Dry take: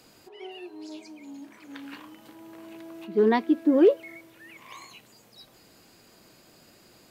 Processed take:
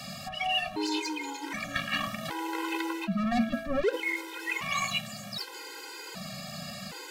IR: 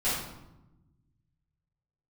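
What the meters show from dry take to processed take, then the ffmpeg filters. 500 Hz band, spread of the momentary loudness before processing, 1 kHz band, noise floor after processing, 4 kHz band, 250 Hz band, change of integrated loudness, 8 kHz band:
−9.0 dB, 22 LU, +3.5 dB, −43 dBFS, +14.0 dB, −5.0 dB, −9.5 dB, can't be measured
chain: -filter_complex "[0:a]bandreject=frequency=55.74:width_type=h:width=4,bandreject=frequency=111.48:width_type=h:width=4,bandreject=frequency=167.22:width_type=h:width=4,bandreject=frequency=222.96:width_type=h:width=4,bandreject=frequency=278.7:width_type=h:width=4,asplit=2[link_01][link_02];[link_02]highpass=frequency=720:poles=1,volume=24dB,asoftclip=type=tanh:threshold=-9.5dB[link_03];[link_01][link_03]amix=inputs=2:normalize=0,lowpass=frequency=4500:poles=1,volume=-6dB,asplit=2[link_04][link_05];[link_05]aeval=exprs='sgn(val(0))*max(abs(val(0))-0.0168,0)':channel_layout=same,volume=-5dB[link_06];[link_04][link_06]amix=inputs=2:normalize=0,lowshelf=frequency=230:width_type=q:width=3:gain=8,areverse,acompressor=threshold=-26dB:ratio=6,areverse,afftfilt=real='re*gt(sin(2*PI*0.65*pts/sr)*(1-2*mod(floor(b*sr/1024/270),2)),0)':imag='im*gt(sin(2*PI*0.65*pts/sr)*(1-2*mod(floor(b*sr/1024/270),2)),0)':win_size=1024:overlap=0.75,volume=3.5dB"

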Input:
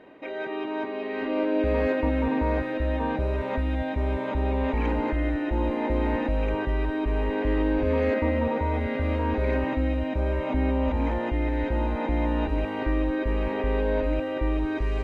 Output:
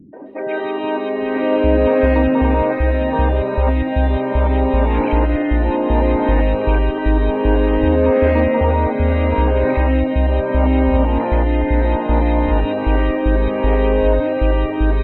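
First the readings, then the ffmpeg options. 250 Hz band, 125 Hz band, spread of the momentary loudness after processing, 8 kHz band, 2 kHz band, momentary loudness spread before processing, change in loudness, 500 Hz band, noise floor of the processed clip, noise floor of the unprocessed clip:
+8.5 dB, +10.5 dB, 4 LU, can't be measured, +7.5 dB, 4 LU, +10.0 dB, +10.5 dB, −22 dBFS, −32 dBFS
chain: -filter_complex "[0:a]acontrast=65,acrossover=split=240|1900[link_01][link_02][link_03];[link_02]adelay=130[link_04];[link_03]adelay=260[link_05];[link_01][link_04][link_05]amix=inputs=3:normalize=0,areverse,acompressor=mode=upward:threshold=-27dB:ratio=2.5,areverse,afftdn=noise_reduction=14:noise_floor=-40,volume=4.5dB"

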